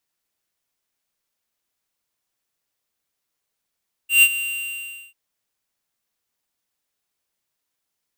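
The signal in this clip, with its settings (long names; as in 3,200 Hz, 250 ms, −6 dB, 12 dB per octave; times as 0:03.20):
note with an ADSR envelope square 2,770 Hz, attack 134 ms, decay 57 ms, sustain −14.5 dB, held 0.27 s, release 773 ms −10.5 dBFS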